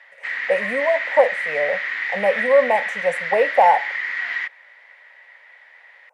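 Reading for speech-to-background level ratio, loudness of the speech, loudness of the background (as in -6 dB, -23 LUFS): 4.0 dB, -20.0 LUFS, -24.0 LUFS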